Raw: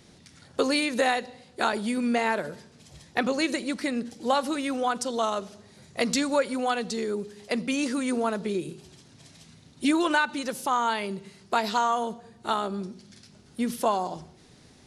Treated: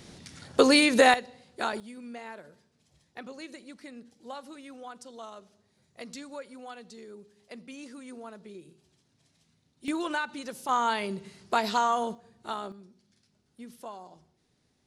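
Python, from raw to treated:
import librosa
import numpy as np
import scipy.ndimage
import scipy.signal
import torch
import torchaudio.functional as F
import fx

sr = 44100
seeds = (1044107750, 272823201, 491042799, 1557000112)

y = fx.gain(x, sr, db=fx.steps((0.0, 5.0), (1.14, -5.0), (1.8, -17.0), (9.88, -7.5), (10.69, -1.0), (12.15, -8.0), (12.72, -17.5)))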